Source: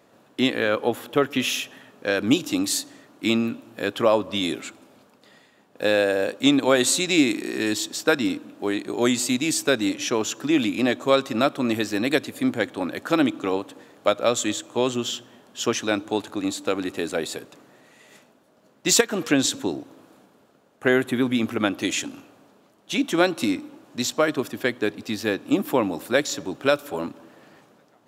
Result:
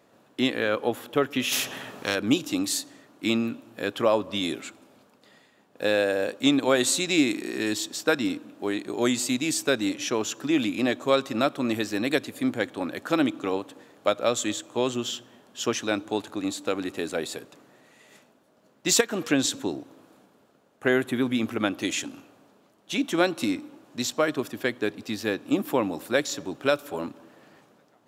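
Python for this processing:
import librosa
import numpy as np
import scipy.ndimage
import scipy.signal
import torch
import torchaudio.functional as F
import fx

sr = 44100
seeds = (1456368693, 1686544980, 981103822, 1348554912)

y = fx.spectral_comp(x, sr, ratio=2.0, at=(1.51, 2.14), fade=0.02)
y = y * 10.0 ** (-3.0 / 20.0)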